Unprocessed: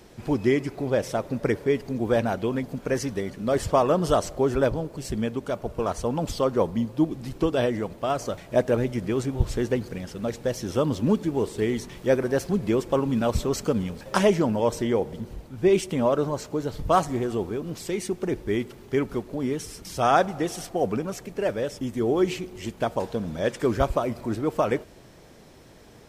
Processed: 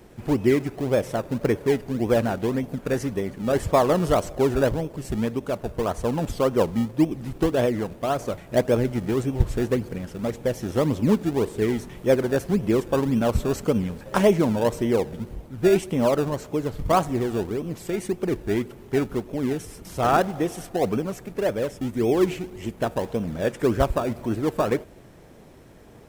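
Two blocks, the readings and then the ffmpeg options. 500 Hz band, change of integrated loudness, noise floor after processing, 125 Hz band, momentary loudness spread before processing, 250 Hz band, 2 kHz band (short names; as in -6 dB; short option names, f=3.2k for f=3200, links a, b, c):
+1.5 dB, +1.5 dB, -47 dBFS, +2.5 dB, 8 LU, +2.0 dB, +0.5 dB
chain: -filter_complex "[0:a]equalizer=f=4.8k:w=1:g=-7.5,asplit=2[a][b];[b]acrusher=samples=29:mix=1:aa=0.000001:lfo=1:lforange=29:lforate=1.8,volume=-9.5dB[c];[a][c]amix=inputs=2:normalize=0"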